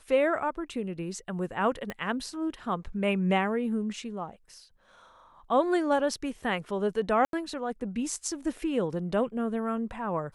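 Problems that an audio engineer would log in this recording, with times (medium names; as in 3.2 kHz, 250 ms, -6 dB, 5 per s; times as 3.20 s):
1.90 s: pop -20 dBFS
7.25–7.33 s: dropout 82 ms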